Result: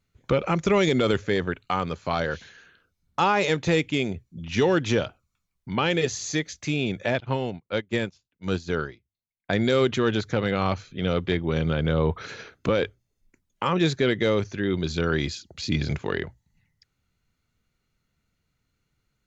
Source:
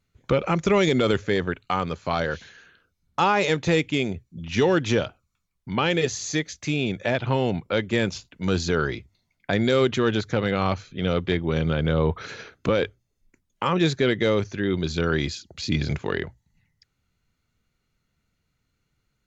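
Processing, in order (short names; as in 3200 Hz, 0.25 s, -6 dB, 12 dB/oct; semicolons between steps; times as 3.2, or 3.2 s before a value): 7.2–9.5 upward expander 2.5:1, over -37 dBFS; gain -1 dB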